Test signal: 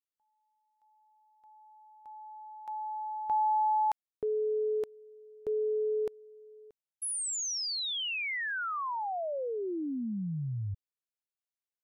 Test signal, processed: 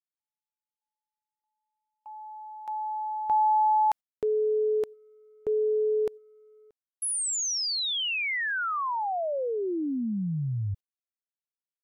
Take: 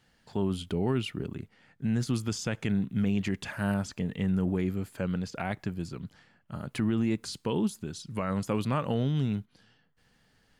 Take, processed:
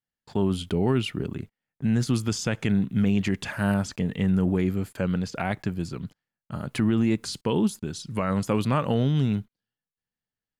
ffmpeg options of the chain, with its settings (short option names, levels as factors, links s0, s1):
-af "agate=range=0.0224:threshold=0.00251:ratio=16:release=64:detection=rms,volume=1.78"